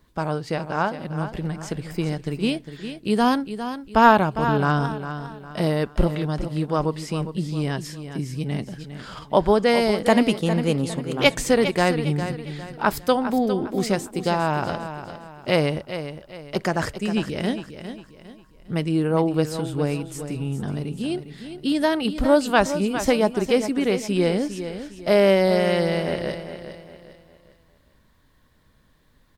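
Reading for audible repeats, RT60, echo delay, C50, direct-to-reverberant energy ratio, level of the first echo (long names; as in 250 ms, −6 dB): 3, no reverb audible, 405 ms, no reverb audible, no reverb audible, −10.5 dB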